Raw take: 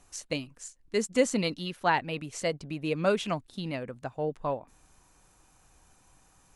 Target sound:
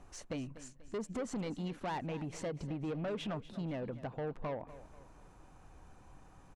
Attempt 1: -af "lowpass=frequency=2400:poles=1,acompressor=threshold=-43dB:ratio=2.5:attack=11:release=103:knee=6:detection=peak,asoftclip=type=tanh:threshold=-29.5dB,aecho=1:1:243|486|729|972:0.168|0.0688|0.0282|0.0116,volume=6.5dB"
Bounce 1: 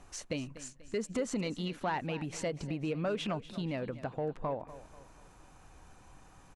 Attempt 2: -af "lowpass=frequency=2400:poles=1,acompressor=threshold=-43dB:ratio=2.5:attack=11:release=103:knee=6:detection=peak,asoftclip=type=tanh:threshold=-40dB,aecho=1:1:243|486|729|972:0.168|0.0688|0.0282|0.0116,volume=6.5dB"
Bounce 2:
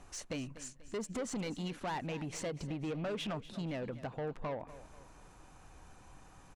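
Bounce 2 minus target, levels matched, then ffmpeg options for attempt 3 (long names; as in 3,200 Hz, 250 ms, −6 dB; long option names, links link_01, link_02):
2,000 Hz band +2.5 dB
-af "lowpass=frequency=980:poles=1,acompressor=threshold=-43dB:ratio=2.5:attack=11:release=103:knee=6:detection=peak,asoftclip=type=tanh:threshold=-40dB,aecho=1:1:243|486|729|972:0.168|0.0688|0.0282|0.0116,volume=6.5dB"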